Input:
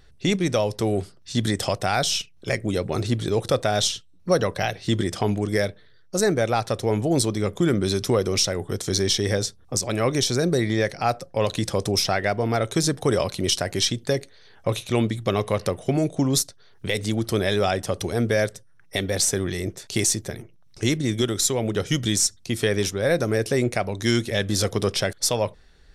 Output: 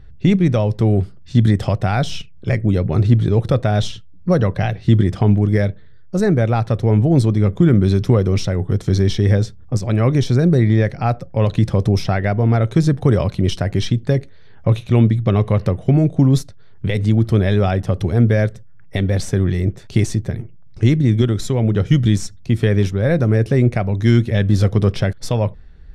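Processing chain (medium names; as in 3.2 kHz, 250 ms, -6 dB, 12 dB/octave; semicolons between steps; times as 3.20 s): tone controls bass +13 dB, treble -14 dB; trim +1 dB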